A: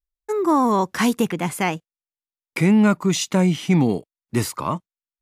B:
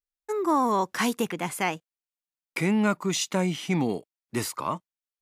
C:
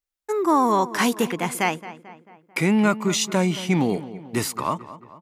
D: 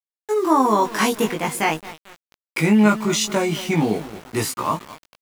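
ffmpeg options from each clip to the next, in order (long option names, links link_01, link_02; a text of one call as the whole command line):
ffmpeg -i in.wav -af "lowshelf=frequency=220:gain=-10,volume=-3.5dB" out.wav
ffmpeg -i in.wav -filter_complex "[0:a]asplit=2[link_01][link_02];[link_02]adelay=221,lowpass=frequency=2700:poles=1,volume=-15dB,asplit=2[link_03][link_04];[link_04]adelay=221,lowpass=frequency=2700:poles=1,volume=0.54,asplit=2[link_05][link_06];[link_06]adelay=221,lowpass=frequency=2700:poles=1,volume=0.54,asplit=2[link_07][link_08];[link_08]adelay=221,lowpass=frequency=2700:poles=1,volume=0.54,asplit=2[link_09][link_10];[link_10]adelay=221,lowpass=frequency=2700:poles=1,volume=0.54[link_11];[link_01][link_03][link_05][link_07][link_09][link_11]amix=inputs=6:normalize=0,volume=4.5dB" out.wav
ffmpeg -i in.wav -filter_complex "[0:a]aeval=exprs='val(0)*gte(abs(val(0)),0.0188)':channel_layout=same,asplit=2[link_01][link_02];[link_02]adelay=19,volume=-2dB[link_03];[link_01][link_03]amix=inputs=2:normalize=0" out.wav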